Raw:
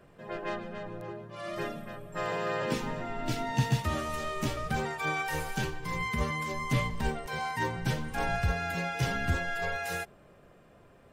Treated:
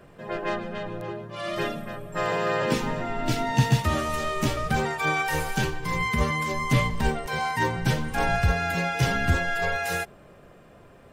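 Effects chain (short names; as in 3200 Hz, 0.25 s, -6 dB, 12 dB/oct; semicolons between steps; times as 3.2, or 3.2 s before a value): 0.74–1.75 dynamic EQ 3300 Hz, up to +5 dB, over -60 dBFS, Q 1.7; gain +6.5 dB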